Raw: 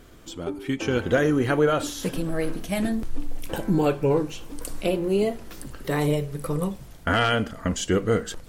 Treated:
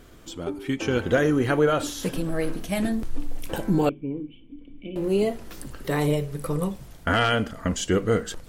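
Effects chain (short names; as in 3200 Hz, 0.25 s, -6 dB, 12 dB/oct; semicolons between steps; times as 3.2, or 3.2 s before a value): 3.89–4.96 vocal tract filter i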